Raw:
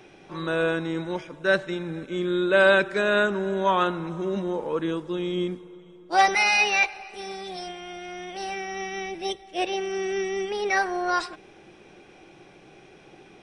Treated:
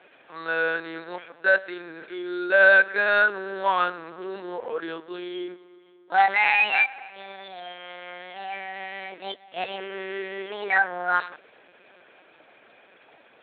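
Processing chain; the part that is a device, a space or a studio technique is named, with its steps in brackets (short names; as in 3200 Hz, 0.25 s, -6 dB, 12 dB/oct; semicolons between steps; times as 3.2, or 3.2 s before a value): talking toy (LPC vocoder at 8 kHz pitch kept; HPF 470 Hz 12 dB/oct; bell 1600 Hz +7 dB 0.44 oct)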